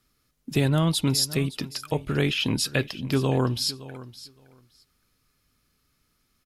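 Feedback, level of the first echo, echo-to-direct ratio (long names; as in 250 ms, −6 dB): 16%, −17.0 dB, −17.0 dB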